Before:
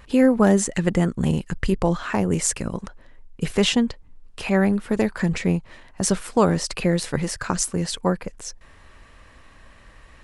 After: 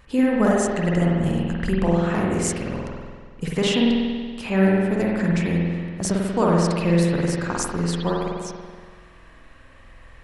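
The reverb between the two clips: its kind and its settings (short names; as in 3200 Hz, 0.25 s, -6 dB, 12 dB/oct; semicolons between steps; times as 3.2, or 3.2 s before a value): spring tank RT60 1.7 s, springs 47 ms, chirp 50 ms, DRR -3.5 dB; gain -4.5 dB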